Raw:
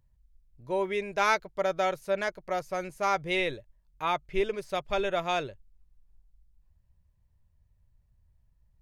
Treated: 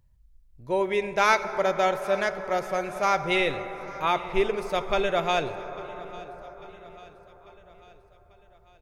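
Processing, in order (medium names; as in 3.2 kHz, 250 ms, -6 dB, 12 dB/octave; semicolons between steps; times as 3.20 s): feedback delay 845 ms, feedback 55%, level -20 dB; on a send at -9.5 dB: reverberation RT60 5.5 s, pre-delay 3 ms; on the sum: trim +4 dB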